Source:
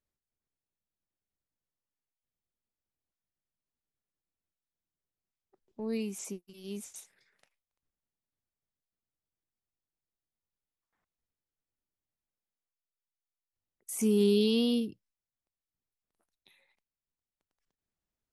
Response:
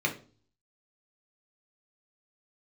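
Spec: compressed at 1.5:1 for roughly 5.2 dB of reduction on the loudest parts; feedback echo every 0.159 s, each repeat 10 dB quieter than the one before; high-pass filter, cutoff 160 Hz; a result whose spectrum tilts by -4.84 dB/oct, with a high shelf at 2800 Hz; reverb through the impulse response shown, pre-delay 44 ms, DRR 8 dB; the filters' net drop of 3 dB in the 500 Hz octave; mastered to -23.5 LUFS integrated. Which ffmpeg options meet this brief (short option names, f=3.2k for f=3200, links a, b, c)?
-filter_complex "[0:a]highpass=160,equalizer=f=500:t=o:g=-3.5,highshelf=f=2.8k:g=-5.5,acompressor=threshold=-39dB:ratio=1.5,aecho=1:1:159|318|477|636:0.316|0.101|0.0324|0.0104,asplit=2[a][b];[1:a]atrim=start_sample=2205,adelay=44[c];[b][c]afir=irnorm=-1:irlink=0,volume=-17dB[d];[a][d]amix=inputs=2:normalize=0,volume=13.5dB"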